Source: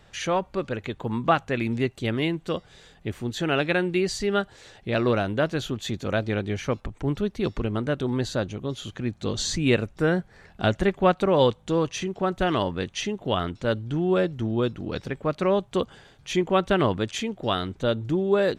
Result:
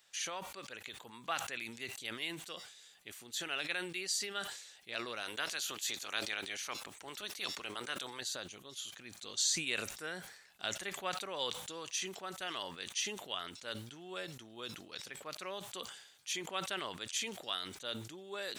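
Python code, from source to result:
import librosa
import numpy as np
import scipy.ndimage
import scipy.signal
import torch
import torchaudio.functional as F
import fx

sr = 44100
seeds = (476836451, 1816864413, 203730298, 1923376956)

y = fx.spec_clip(x, sr, under_db=14, at=(5.21, 8.19), fade=0.02)
y = np.diff(y, prepend=0.0)
y = fx.sustainer(y, sr, db_per_s=66.0)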